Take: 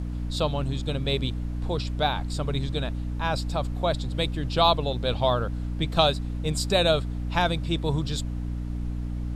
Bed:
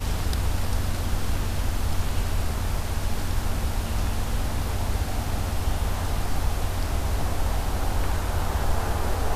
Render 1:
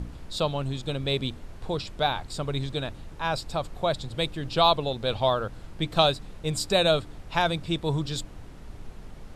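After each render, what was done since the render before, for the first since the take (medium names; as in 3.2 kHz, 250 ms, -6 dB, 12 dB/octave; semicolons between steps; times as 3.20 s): de-hum 60 Hz, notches 5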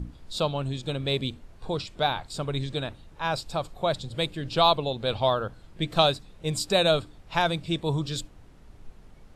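noise print and reduce 8 dB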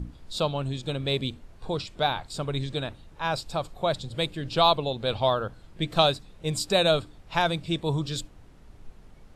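no audible change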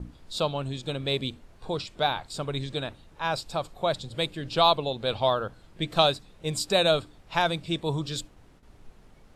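gate with hold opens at -42 dBFS; bass shelf 160 Hz -5 dB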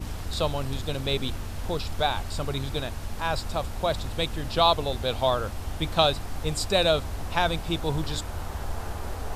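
add bed -8 dB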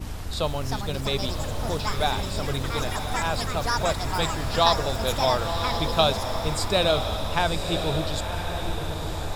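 ever faster or slower copies 430 ms, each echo +6 st, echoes 3, each echo -6 dB; echo that smears into a reverb 1033 ms, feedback 43%, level -6.5 dB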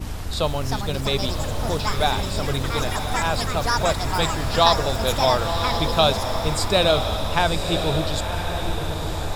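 trim +3.5 dB; peak limiter -2 dBFS, peak gain reduction 2 dB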